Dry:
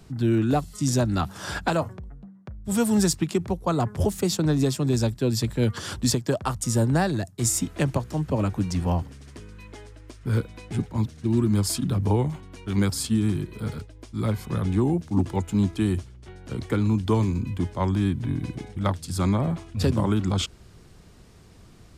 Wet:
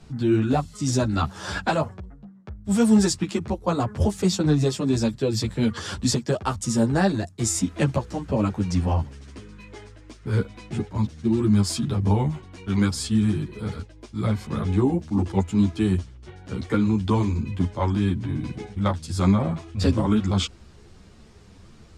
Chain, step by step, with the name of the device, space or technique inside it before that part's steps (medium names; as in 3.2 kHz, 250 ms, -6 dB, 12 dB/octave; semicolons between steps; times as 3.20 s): string-machine ensemble chorus (three-phase chorus; low-pass 8 kHz 12 dB/octave); trim +4.5 dB